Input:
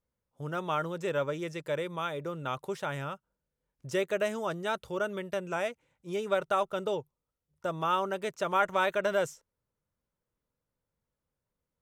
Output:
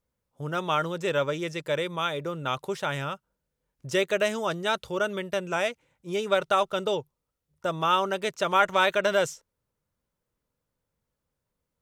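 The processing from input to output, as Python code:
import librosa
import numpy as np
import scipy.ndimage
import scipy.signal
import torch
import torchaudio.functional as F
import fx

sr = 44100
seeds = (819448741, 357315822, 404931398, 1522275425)

y = fx.dynamic_eq(x, sr, hz=4100.0, q=0.73, threshold_db=-49.0, ratio=4.0, max_db=7)
y = F.gain(torch.from_numpy(y), 4.0).numpy()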